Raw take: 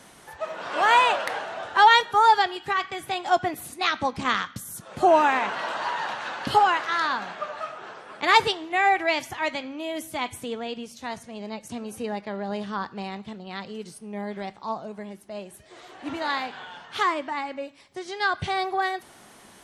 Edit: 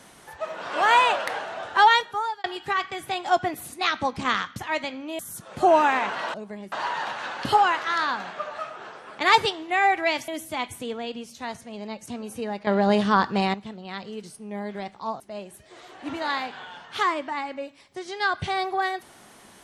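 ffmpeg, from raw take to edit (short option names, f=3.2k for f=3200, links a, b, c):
-filter_complex "[0:a]asplit=10[a][b][c][d][e][f][g][h][i][j];[a]atrim=end=2.44,asetpts=PTS-STARTPTS,afade=t=out:st=1.79:d=0.65[k];[b]atrim=start=2.44:end=4.592,asetpts=PTS-STARTPTS,afade=t=in:d=0.004:c=hsin[l];[c]atrim=start=9.298:end=9.902[m];[d]atrim=start=4.588:end=5.742[n];[e]atrim=start=14.818:end=15.202[o];[f]atrim=start=5.738:end=9.302[p];[g]atrim=start=9.898:end=12.292[q];[h]atrim=start=12.288:end=13.162,asetpts=PTS-STARTPTS,volume=10.5dB[r];[i]atrim=start=13.158:end=14.822[s];[j]atrim=start=15.198[t];[k][l]concat=n=2:v=0:a=1[u];[u][m]acrossfade=d=0.004:c1=hsin:c2=hsin[v];[v][n]acrossfade=d=0.004:c1=hsin:c2=hsin[w];[w][o]acrossfade=d=0.004:c1=hsin:c2=hsin[x];[x][p]acrossfade=d=0.004:c1=hsin:c2=hsin[y];[y][q]acrossfade=d=0.004:c1=hsin:c2=hsin[z];[z][r]acrossfade=d=0.004:c1=hsin:c2=hsin[aa];[aa][s]acrossfade=d=0.004:c1=hsin:c2=hsin[ab];[ab][t]acrossfade=d=0.004:c1=hsin:c2=hsin"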